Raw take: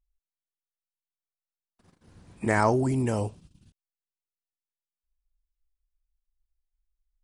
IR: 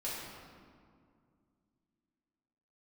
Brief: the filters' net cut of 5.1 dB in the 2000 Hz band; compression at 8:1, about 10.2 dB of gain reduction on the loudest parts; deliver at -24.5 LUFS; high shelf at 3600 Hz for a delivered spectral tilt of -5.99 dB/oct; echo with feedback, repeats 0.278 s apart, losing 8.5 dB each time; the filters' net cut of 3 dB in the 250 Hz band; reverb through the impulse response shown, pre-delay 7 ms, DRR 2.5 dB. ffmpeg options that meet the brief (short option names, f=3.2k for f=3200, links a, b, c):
-filter_complex "[0:a]equalizer=f=250:t=o:g=-3.5,equalizer=f=2k:t=o:g=-7.5,highshelf=f=3.6k:g=4,acompressor=threshold=-30dB:ratio=8,aecho=1:1:278|556|834|1112:0.376|0.143|0.0543|0.0206,asplit=2[a][b];[1:a]atrim=start_sample=2205,adelay=7[c];[b][c]afir=irnorm=-1:irlink=0,volume=-5.5dB[d];[a][d]amix=inputs=2:normalize=0,volume=10dB"